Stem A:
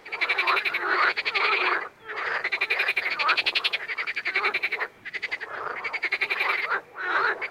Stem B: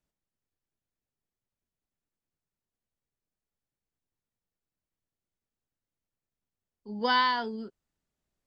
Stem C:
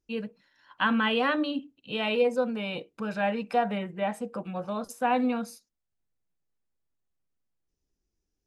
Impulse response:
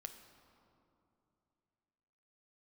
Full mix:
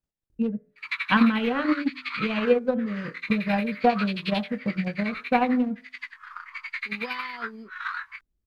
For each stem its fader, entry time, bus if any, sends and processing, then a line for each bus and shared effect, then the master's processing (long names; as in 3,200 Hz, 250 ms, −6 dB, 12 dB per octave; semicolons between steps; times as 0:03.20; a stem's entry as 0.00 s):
−8.0 dB, 0.70 s, no send, Butterworth high-pass 1,000 Hz 72 dB per octave; downward expander −43 dBFS; chorus effect 0.6 Hz, delay 15.5 ms, depth 8 ms
−5.5 dB, 0.00 s, no send, downward compressor 3 to 1, threshold −32 dBFS, peak gain reduction 8.5 dB
−1.5 dB, 0.30 s, no send, adaptive Wiener filter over 41 samples; bass and treble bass +7 dB, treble −6 dB; hum removal 85.26 Hz, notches 28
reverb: not used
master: low-shelf EQ 370 Hz +4 dB; transient designer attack +9 dB, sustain −4 dB